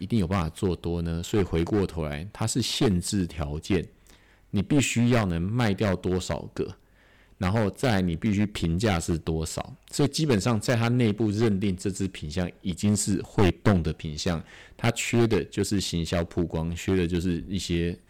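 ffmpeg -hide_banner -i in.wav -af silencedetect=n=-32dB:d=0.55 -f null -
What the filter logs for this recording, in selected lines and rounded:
silence_start: 6.71
silence_end: 7.41 | silence_duration: 0.70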